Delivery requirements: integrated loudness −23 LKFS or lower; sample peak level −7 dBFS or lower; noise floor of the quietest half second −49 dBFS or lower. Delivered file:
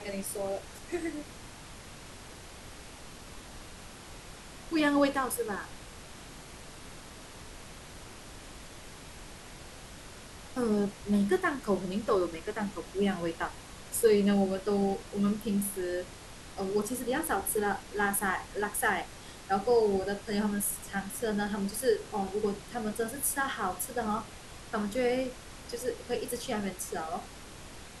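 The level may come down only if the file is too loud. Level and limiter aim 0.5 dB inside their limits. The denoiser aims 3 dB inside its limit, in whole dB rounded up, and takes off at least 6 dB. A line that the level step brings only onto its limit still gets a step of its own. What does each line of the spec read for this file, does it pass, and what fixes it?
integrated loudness −31.5 LKFS: in spec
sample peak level −13.0 dBFS: in spec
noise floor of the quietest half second −47 dBFS: out of spec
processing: broadband denoise 6 dB, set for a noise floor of −47 dBFS

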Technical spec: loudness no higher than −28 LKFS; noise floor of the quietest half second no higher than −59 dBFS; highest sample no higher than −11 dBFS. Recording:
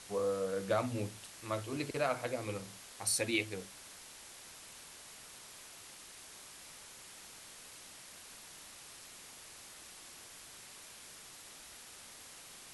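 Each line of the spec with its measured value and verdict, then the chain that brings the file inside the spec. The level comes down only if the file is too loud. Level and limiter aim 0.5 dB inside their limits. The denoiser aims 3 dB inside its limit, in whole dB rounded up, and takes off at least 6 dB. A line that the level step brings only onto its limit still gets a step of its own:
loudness −41.0 LKFS: in spec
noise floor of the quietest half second −53 dBFS: out of spec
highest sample −18.5 dBFS: in spec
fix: broadband denoise 9 dB, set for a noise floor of −53 dBFS

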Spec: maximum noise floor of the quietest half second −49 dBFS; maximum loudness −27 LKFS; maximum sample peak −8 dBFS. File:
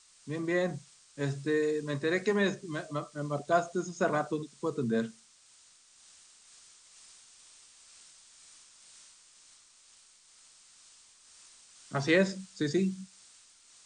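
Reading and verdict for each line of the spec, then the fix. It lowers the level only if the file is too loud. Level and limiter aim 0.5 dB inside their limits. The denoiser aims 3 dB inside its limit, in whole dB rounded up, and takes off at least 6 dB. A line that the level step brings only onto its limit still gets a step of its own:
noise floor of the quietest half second −61 dBFS: in spec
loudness −31.5 LKFS: in spec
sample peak −13.5 dBFS: in spec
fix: no processing needed

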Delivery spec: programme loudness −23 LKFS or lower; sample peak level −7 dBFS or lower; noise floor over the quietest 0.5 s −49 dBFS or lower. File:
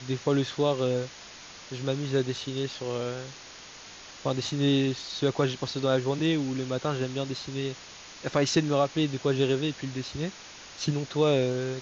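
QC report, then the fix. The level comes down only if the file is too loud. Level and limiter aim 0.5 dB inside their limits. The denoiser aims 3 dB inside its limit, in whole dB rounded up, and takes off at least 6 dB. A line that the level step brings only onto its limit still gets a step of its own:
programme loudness −28.5 LKFS: in spec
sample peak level −11.0 dBFS: in spec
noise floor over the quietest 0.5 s −46 dBFS: out of spec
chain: broadband denoise 6 dB, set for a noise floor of −46 dBFS

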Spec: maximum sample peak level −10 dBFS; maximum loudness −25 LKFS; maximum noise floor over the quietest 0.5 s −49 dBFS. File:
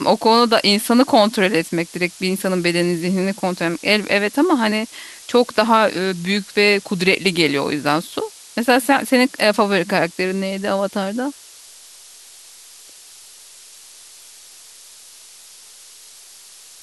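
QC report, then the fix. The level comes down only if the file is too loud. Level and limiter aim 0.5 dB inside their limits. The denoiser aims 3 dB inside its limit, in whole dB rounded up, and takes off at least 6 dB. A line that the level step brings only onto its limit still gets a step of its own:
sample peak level −2.0 dBFS: out of spec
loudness −17.5 LKFS: out of spec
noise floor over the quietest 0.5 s −43 dBFS: out of spec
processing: level −8 dB
brickwall limiter −10.5 dBFS

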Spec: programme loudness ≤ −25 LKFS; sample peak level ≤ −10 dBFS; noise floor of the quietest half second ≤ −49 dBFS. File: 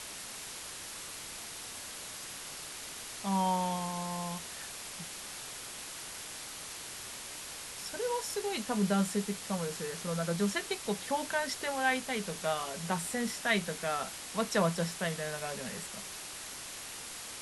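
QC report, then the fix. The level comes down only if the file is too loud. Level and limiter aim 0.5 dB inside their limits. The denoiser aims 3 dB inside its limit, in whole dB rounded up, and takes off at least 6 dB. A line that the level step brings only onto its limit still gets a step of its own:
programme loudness −35.0 LKFS: in spec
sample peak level −16.0 dBFS: in spec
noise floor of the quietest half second −44 dBFS: out of spec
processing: broadband denoise 8 dB, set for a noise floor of −44 dBFS

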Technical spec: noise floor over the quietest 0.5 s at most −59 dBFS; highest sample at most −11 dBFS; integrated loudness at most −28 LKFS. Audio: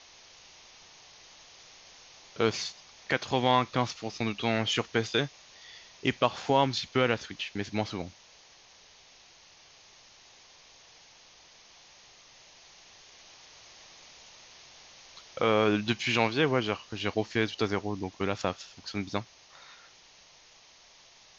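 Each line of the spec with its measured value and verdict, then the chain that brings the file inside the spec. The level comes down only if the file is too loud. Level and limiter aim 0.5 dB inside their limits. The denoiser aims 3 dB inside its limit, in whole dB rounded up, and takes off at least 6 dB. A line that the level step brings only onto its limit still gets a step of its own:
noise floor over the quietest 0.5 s −57 dBFS: out of spec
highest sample −9.0 dBFS: out of spec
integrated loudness −29.5 LKFS: in spec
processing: broadband denoise 6 dB, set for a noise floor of −57 dBFS
brickwall limiter −11.5 dBFS

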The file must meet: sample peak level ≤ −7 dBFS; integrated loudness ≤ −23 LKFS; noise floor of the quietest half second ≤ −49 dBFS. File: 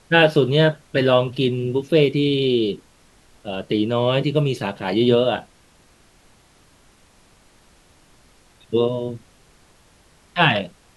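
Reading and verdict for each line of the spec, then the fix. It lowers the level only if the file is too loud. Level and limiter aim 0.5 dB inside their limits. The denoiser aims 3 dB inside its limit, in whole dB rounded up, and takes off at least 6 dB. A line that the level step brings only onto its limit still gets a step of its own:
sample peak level −2.5 dBFS: out of spec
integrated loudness −20.0 LKFS: out of spec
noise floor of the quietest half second −54 dBFS: in spec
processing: level −3.5 dB
brickwall limiter −7.5 dBFS

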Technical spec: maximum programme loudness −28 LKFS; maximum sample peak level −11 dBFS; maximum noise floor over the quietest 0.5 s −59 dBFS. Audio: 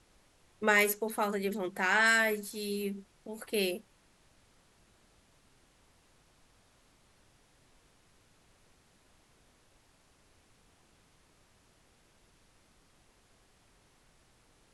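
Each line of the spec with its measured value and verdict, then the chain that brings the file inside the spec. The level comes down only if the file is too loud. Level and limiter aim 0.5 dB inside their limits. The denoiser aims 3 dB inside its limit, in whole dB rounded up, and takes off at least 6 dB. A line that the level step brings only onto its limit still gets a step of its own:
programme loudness −30.0 LKFS: in spec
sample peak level −12.5 dBFS: in spec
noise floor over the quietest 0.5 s −66 dBFS: in spec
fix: no processing needed

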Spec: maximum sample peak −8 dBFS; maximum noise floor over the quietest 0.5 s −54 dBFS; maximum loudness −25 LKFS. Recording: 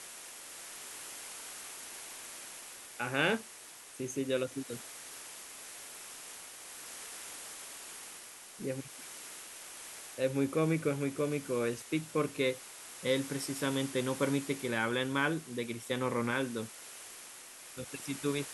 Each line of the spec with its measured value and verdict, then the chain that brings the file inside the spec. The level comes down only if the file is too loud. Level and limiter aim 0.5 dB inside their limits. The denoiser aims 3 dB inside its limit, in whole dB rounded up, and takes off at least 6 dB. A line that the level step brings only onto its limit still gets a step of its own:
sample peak −15.0 dBFS: in spec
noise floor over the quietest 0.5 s −51 dBFS: out of spec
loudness −36.5 LKFS: in spec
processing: broadband denoise 6 dB, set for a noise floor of −51 dBFS

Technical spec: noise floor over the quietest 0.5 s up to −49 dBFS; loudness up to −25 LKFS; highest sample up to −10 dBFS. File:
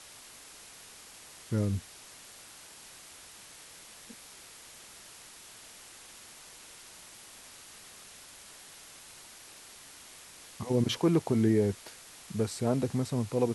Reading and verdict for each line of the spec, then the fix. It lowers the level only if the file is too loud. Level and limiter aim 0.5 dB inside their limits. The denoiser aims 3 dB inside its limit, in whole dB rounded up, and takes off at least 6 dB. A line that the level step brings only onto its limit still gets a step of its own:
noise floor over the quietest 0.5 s −51 dBFS: in spec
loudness −30.0 LKFS: in spec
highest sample −14.0 dBFS: in spec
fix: no processing needed

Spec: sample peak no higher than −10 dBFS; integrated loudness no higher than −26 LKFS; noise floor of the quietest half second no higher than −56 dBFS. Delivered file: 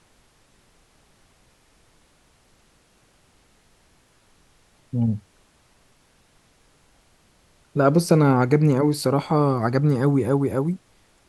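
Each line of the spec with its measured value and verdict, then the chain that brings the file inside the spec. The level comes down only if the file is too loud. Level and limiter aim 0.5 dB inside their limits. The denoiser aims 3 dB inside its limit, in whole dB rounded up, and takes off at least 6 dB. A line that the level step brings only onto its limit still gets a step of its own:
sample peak −3.0 dBFS: out of spec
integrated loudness −21.0 LKFS: out of spec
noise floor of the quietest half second −60 dBFS: in spec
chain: level −5.5 dB
brickwall limiter −10.5 dBFS

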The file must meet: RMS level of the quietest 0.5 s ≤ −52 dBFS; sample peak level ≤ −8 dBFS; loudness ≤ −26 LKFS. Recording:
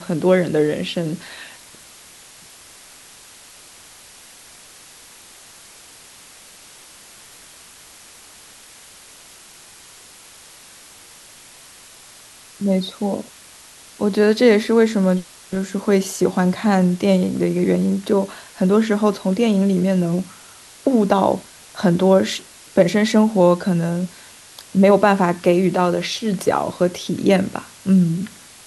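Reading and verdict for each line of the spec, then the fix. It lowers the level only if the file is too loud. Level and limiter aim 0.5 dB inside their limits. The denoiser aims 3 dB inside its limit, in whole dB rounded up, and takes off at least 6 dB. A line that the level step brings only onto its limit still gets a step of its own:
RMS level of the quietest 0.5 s −44 dBFS: out of spec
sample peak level −1.5 dBFS: out of spec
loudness −18.5 LKFS: out of spec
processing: broadband denoise 6 dB, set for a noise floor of −44 dBFS
level −8 dB

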